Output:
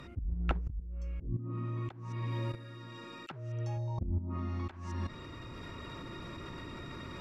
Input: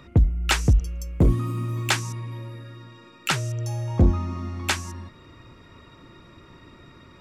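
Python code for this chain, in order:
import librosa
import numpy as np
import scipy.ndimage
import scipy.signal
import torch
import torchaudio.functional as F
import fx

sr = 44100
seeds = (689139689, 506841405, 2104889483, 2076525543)

y = fx.env_lowpass_down(x, sr, base_hz=340.0, full_db=-17.5)
y = fx.low_shelf(y, sr, hz=72.0, db=-8.5, at=(1.37, 3.77))
y = fx.spec_box(y, sr, start_s=3.78, length_s=0.52, low_hz=1100.0, high_hz=3600.0, gain_db=-14)
y = fx.level_steps(y, sr, step_db=13)
y = fx.auto_swell(y, sr, attack_ms=346.0)
y = fx.rider(y, sr, range_db=4, speed_s=2.0)
y = F.gain(torch.from_numpy(y), 4.0).numpy()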